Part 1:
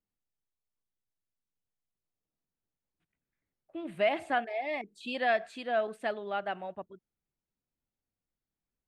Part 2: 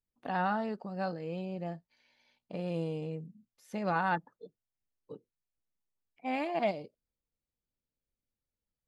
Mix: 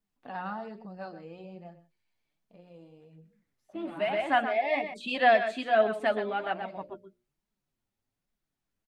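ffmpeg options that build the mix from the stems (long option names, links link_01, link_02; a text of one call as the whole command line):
ffmpeg -i stem1.wav -i stem2.wav -filter_complex "[0:a]bandreject=frequency=490:width=12,acontrast=74,volume=3dB,asplit=2[link_01][link_02];[link_02]volume=-9.5dB[link_03];[1:a]volume=-1.5dB,afade=type=out:start_time=1.53:duration=0.27:silence=0.281838,asplit=3[link_04][link_05][link_06];[link_05]volume=-14.5dB[link_07];[link_06]apad=whole_len=391323[link_08];[link_01][link_08]sidechaincompress=threshold=-45dB:ratio=8:attack=9.6:release=251[link_09];[link_03][link_07]amix=inputs=2:normalize=0,aecho=0:1:125:1[link_10];[link_09][link_04][link_10]amix=inputs=3:normalize=0,highshelf=frequency=6300:gain=-6,bandreject=frequency=60:width_type=h:width=6,bandreject=frequency=120:width_type=h:width=6,bandreject=frequency=180:width_type=h:width=6,bandreject=frequency=240:width_type=h:width=6,bandreject=frequency=300:width_type=h:width=6,bandreject=frequency=360:width_type=h:width=6,bandreject=frequency=420:width_type=h:width=6,bandreject=frequency=480:width_type=h:width=6,bandreject=frequency=540:width_type=h:width=6,bandreject=frequency=600:width_type=h:width=6,flanger=delay=4.2:depth=6.2:regen=33:speed=1.2:shape=triangular" out.wav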